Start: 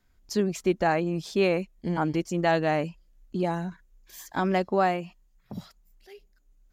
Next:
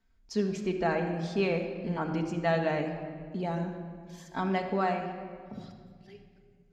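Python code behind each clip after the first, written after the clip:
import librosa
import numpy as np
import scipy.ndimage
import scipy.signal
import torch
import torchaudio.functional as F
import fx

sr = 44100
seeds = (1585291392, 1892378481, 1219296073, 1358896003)

y = scipy.signal.sosfilt(scipy.signal.butter(2, 6000.0, 'lowpass', fs=sr, output='sos'), x)
y = fx.room_shoebox(y, sr, seeds[0], volume_m3=3800.0, walls='mixed', distance_m=1.6)
y = y * 10.0 ** (-6.0 / 20.0)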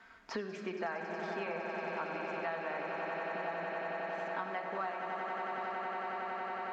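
y = fx.bandpass_q(x, sr, hz=1300.0, q=1.2)
y = fx.echo_swell(y, sr, ms=92, loudest=8, wet_db=-10)
y = fx.band_squash(y, sr, depth_pct=100)
y = y * 10.0 ** (-3.0 / 20.0)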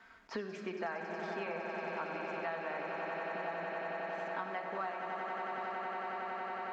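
y = fx.attack_slew(x, sr, db_per_s=400.0)
y = y * 10.0 ** (-1.0 / 20.0)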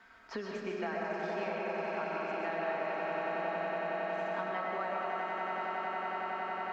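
y = fx.rev_freeverb(x, sr, rt60_s=1.2, hf_ratio=0.6, predelay_ms=90, drr_db=0.0)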